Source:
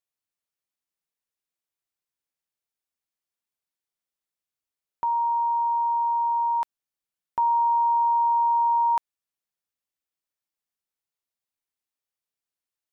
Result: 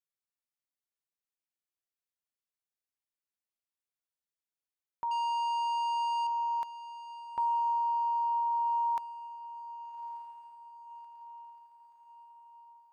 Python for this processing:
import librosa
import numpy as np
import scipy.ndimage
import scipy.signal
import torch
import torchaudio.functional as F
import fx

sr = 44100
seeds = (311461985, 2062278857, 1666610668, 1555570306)

y = fx.leveller(x, sr, passes=2, at=(5.11, 6.27))
y = fx.echo_diffused(y, sr, ms=1189, feedback_pct=51, wet_db=-14.0)
y = y * 10.0 ** (-8.5 / 20.0)